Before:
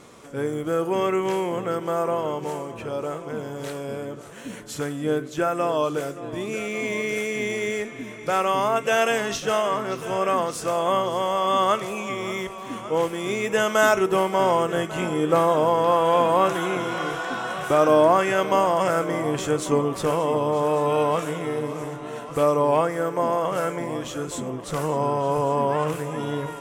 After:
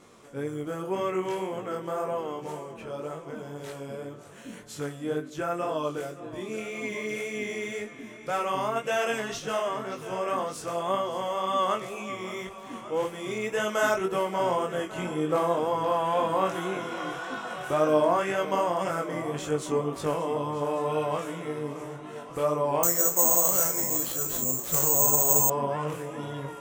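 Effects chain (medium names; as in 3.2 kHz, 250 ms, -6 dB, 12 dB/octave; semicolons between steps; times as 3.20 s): chorus 1.9 Hz, delay 19 ms, depth 4.2 ms; 22.83–25.50 s: careless resampling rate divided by 6×, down none, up zero stuff; trim -3.5 dB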